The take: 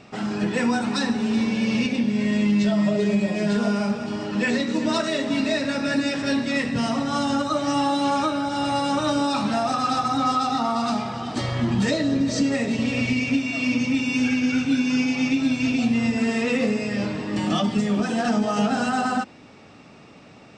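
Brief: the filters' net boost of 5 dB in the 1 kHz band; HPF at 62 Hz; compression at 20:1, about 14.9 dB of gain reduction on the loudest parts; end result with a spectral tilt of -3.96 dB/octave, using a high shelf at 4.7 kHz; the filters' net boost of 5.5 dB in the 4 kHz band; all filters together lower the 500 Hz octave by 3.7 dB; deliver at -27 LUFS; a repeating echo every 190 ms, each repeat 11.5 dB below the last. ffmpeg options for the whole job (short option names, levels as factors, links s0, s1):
-af "highpass=62,equalizer=f=500:t=o:g=-8.5,equalizer=f=1000:t=o:g=9,equalizer=f=4000:t=o:g=3.5,highshelf=f=4700:g=6,acompressor=threshold=0.0355:ratio=20,aecho=1:1:190|380|570:0.266|0.0718|0.0194,volume=1.78"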